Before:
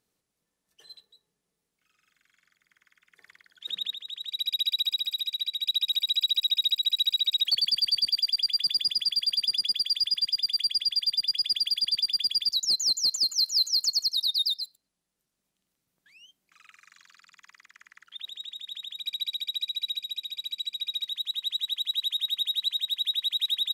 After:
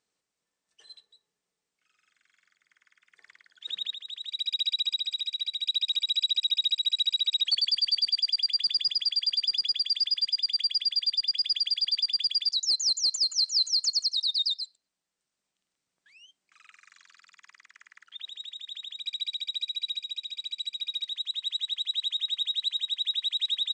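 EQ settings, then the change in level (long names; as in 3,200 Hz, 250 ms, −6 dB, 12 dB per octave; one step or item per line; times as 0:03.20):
Chebyshev low-pass filter 8,900 Hz, order 8
low-shelf EQ 300 Hz −11 dB
0.0 dB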